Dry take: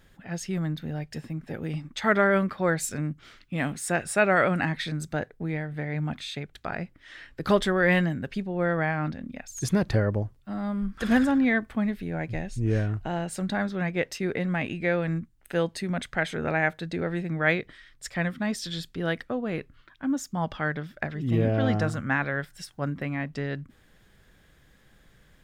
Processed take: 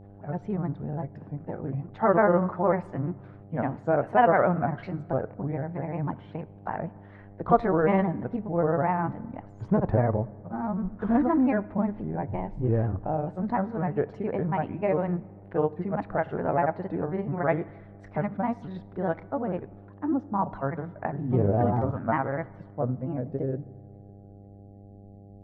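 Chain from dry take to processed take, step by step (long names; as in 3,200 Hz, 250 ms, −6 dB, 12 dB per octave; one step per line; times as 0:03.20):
low-pass filter sweep 900 Hz → 260 Hz, 0:22.26–0:25.26
granular cloud, spray 33 ms, pitch spread up and down by 3 semitones
hum with harmonics 100 Hz, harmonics 8, −48 dBFS −6 dB per octave
on a send: convolution reverb RT60 1.6 s, pre-delay 4 ms, DRR 18 dB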